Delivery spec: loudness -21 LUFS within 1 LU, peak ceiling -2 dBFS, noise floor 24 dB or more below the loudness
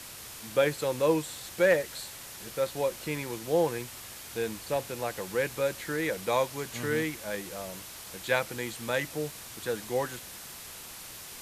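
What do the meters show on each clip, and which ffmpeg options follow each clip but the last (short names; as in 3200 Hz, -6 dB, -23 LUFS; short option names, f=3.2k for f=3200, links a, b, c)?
noise floor -45 dBFS; noise floor target -55 dBFS; loudness -31.0 LUFS; peak -13.0 dBFS; loudness target -21.0 LUFS
-> -af "afftdn=nr=10:nf=-45"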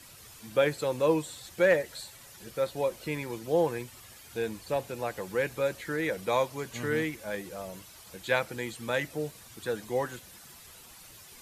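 noise floor -51 dBFS; noise floor target -55 dBFS
-> -af "afftdn=nr=6:nf=-51"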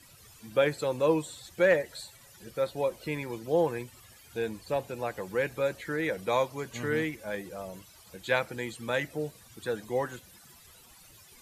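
noise floor -55 dBFS; loudness -31.0 LUFS; peak -13.0 dBFS; loudness target -21.0 LUFS
-> -af "volume=10dB"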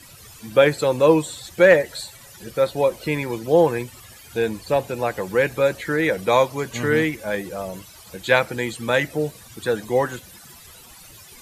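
loudness -21.0 LUFS; peak -3.0 dBFS; noise floor -45 dBFS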